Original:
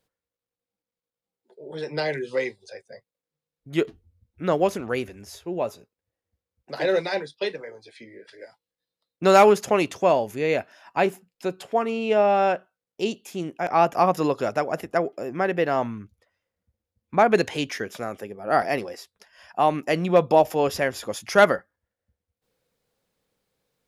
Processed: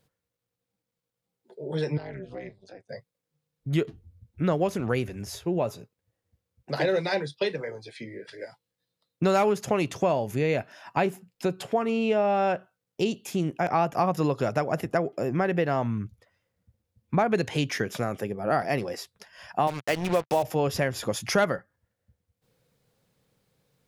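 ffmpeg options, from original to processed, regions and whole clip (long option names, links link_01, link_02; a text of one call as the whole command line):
ffmpeg -i in.wav -filter_complex "[0:a]asettb=1/sr,asplit=3[link_01][link_02][link_03];[link_01]atrim=end=1.974[link_04];[link_02]atrim=start=1.97:end=2.89,asetpts=PTS-STARTPTS,afade=type=in:duration=0.004:curve=qsin,afade=type=out:start_time=0.916:duration=0.004:curve=qsin,tremolo=f=200:d=0.889,lowpass=frequency=1800:poles=1,acompressor=threshold=-49dB:ratio=2:attack=3.2:release=140:knee=1:detection=peak[link_05];[link_03]atrim=start=2.886[link_06];[link_04][link_05]acrossfade=duration=0.004:curve1=hsin:curve2=qsin[link_07];[link_07][link_06]acrossfade=duration=0.004:curve1=qsin:curve2=hsin,asettb=1/sr,asplit=3[link_08][link_09][link_10];[link_08]atrim=end=19.674[link_11];[link_09]atrim=start=19.67:end=20.43,asetpts=PTS-STARTPTS,afade=type=in:duration=0.004:curve=qsin,afade=type=out:start_time=0.756:duration=0.004:curve=qsin,highpass=frequency=490:poles=1,acrusher=bits=4:mix=0:aa=0.5[link_12];[link_10]atrim=start=20.426[link_13];[link_11][link_12]acrossfade=duration=0.004:curve1=hsin:curve2=qsin[link_14];[link_14][link_13]acrossfade=duration=0.004:curve1=qsin:curve2=hsin,equalizer=frequency=130:width_type=o:width=1.1:gain=10.5,acompressor=threshold=-27dB:ratio=3,volume=3.5dB" out.wav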